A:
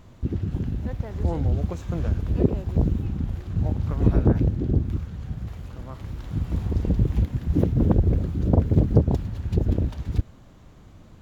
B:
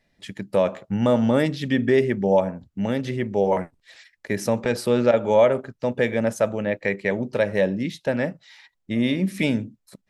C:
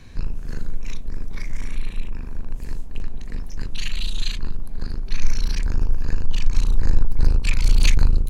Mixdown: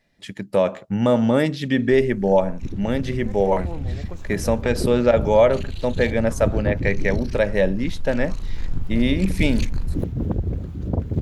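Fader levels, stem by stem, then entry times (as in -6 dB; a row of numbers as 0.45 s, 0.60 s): -4.5 dB, +1.5 dB, -10.5 dB; 2.40 s, 0.00 s, 1.75 s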